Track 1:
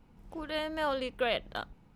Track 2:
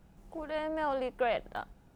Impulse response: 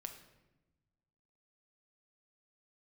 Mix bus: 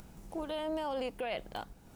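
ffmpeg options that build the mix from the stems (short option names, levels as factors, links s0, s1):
-filter_complex "[0:a]acompressor=threshold=0.0126:ratio=6,volume=0.562[s0];[1:a]alimiter=level_in=1.78:limit=0.0631:level=0:latency=1:release=19,volume=0.562,volume=1.06[s1];[s0][s1]amix=inputs=2:normalize=0,bass=f=250:g=-1,treble=f=4000:g=8,acompressor=mode=upward:threshold=0.00562:ratio=2.5"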